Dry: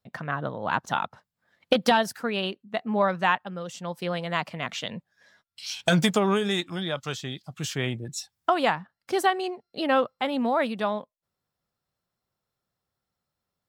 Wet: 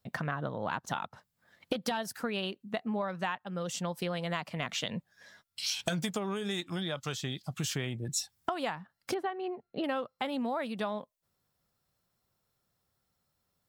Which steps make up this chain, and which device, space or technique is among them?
9.14–9.84 air absorption 480 m; ASMR close-microphone chain (low shelf 170 Hz +3.5 dB; compressor 6:1, threshold -34 dBFS, peak gain reduction 17 dB; high shelf 6300 Hz +6 dB); gain +2.5 dB

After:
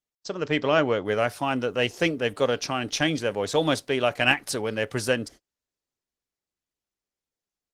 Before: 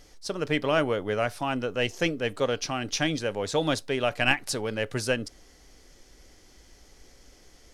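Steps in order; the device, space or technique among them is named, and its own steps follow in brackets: video call (HPF 100 Hz 6 dB/oct; AGC gain up to 3.5 dB; gate -42 dBFS, range -43 dB; Opus 20 kbps 48000 Hz)

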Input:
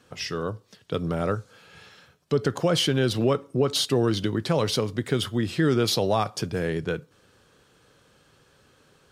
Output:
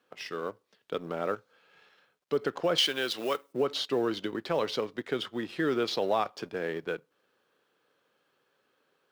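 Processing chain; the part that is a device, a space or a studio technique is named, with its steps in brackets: phone line with mismatched companding (BPF 320–3600 Hz; G.711 law mismatch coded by A); 2.78–3.53 tilt +3.5 dB/oct; gain -2.5 dB

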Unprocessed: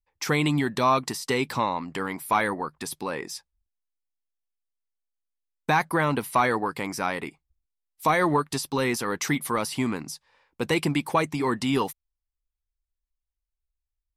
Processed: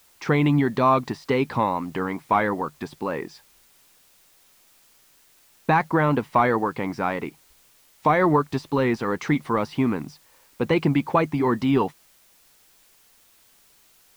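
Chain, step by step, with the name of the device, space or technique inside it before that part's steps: cassette deck with a dirty head (tape spacing loss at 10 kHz 31 dB; wow and flutter; white noise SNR 33 dB); gain +5.5 dB

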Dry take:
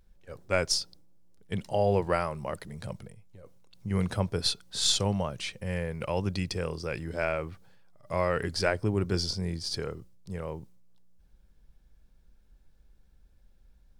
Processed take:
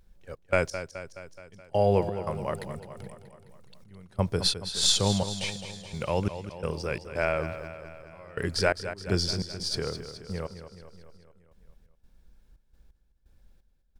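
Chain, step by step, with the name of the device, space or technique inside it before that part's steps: trance gate with a delay (step gate "xx.x..xx..xx.x" 86 bpm -24 dB; feedback echo 0.212 s, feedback 60%, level -11 dB); gain +2.5 dB

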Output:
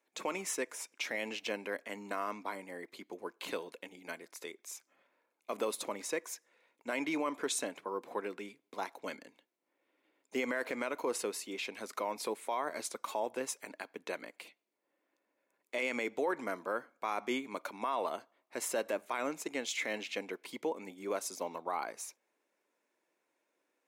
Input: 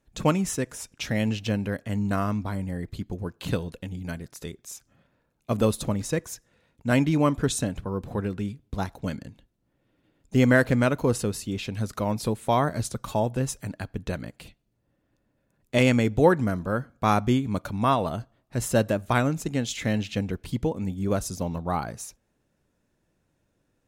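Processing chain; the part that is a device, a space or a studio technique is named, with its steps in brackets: laptop speaker (HPF 330 Hz 24 dB/oct; bell 1000 Hz +5.5 dB 0.39 oct; bell 2200 Hz +9 dB 0.32 oct; limiter -18.5 dBFS, peak gain reduction 13 dB); gain -5.5 dB

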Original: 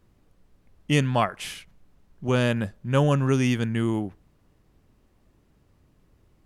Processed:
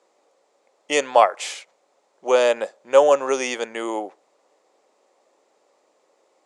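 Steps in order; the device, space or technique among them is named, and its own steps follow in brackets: phone speaker on a table (speaker cabinet 430–8500 Hz, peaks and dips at 540 Hz +7 dB, 800 Hz +5 dB, 1600 Hz -6 dB, 2900 Hz -5 dB, 7200 Hz +6 dB); gain +6.5 dB

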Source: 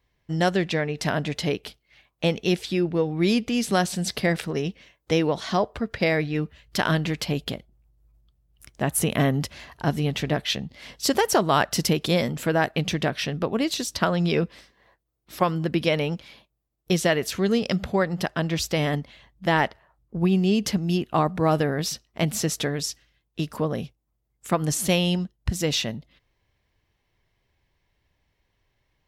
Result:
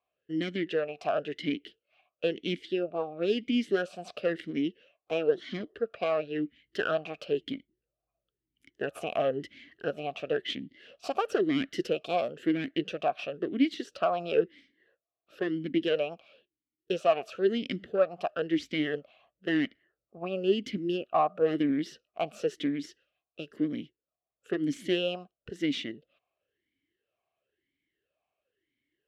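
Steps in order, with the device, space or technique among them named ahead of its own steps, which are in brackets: talk box (tube stage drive 16 dB, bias 0.8; vowel sweep a-i 0.99 Hz); gain +8.5 dB

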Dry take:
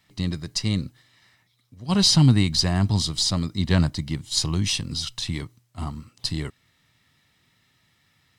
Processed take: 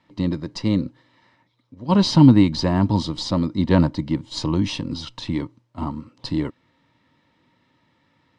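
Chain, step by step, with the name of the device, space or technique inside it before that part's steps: inside a cardboard box (LPF 4300 Hz 12 dB/oct; small resonant body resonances 300/520/910 Hz, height 15 dB, ringing for 25 ms); gain -3 dB

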